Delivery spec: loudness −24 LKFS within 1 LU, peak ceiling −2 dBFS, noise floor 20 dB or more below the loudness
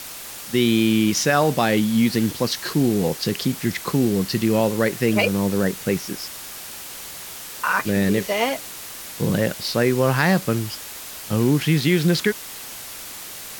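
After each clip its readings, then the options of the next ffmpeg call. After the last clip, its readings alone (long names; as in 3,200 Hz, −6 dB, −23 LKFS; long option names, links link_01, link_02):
background noise floor −36 dBFS; target noise floor −41 dBFS; integrated loudness −21.0 LKFS; sample peak −5.5 dBFS; target loudness −24.0 LKFS
→ -af "afftdn=noise_reduction=6:noise_floor=-36"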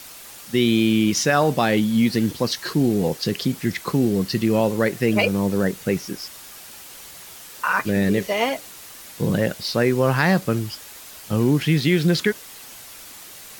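background noise floor −41 dBFS; integrated loudness −21.0 LKFS; sample peak −6.0 dBFS; target loudness −24.0 LKFS
→ -af "volume=-3dB"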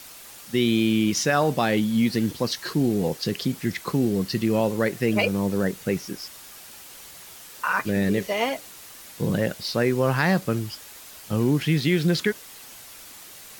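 integrated loudness −24.0 LKFS; sample peak −9.0 dBFS; background noise floor −44 dBFS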